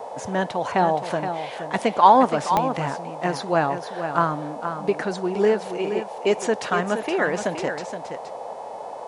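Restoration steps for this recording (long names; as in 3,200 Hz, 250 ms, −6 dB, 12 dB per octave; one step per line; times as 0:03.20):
click removal
hum removal 430.6 Hz, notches 24
noise reduction from a noise print 30 dB
echo removal 471 ms −8.5 dB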